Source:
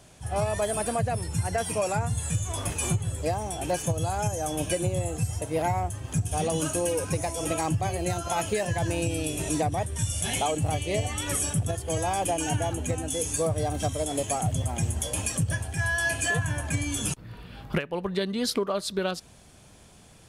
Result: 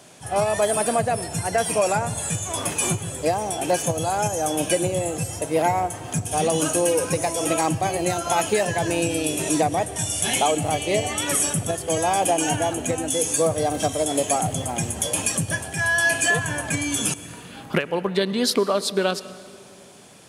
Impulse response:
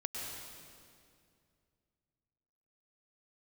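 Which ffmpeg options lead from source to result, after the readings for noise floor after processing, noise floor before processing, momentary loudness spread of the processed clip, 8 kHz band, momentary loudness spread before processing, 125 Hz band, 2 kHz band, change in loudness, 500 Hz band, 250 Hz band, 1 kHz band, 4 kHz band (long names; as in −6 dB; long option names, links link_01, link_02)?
−43 dBFS, −52 dBFS, 5 LU, +7.0 dB, 4 LU, −1.5 dB, +7.0 dB, +5.5 dB, +6.5 dB, +5.0 dB, +7.0 dB, +7.0 dB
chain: -filter_complex "[0:a]highpass=190,asplit=2[link_01][link_02];[1:a]atrim=start_sample=2205[link_03];[link_02][link_03]afir=irnorm=-1:irlink=0,volume=-14dB[link_04];[link_01][link_04]amix=inputs=2:normalize=0,volume=5.5dB"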